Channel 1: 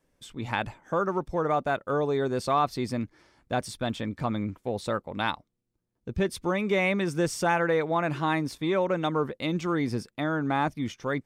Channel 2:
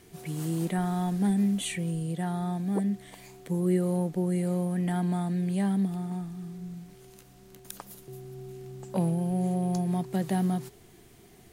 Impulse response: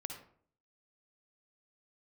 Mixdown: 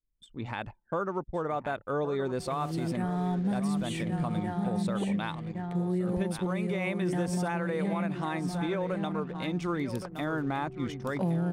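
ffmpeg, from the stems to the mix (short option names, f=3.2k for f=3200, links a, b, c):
-filter_complex "[0:a]highshelf=f=5.7k:g=-3.5,aexciter=amount=1.9:drive=3.3:freq=8.5k,volume=-2.5dB,asplit=2[a][b];[b]volume=-12.5dB[c];[1:a]lowpass=f=3.3k:p=1,acontrast=38,adelay=2250,volume=-5.5dB,asplit=2[d][e];[e]volume=-5dB[f];[c][f]amix=inputs=2:normalize=0,aecho=0:1:1118:1[g];[a][d][g]amix=inputs=3:normalize=0,anlmdn=0.0398,alimiter=limit=-21.5dB:level=0:latency=1:release=210"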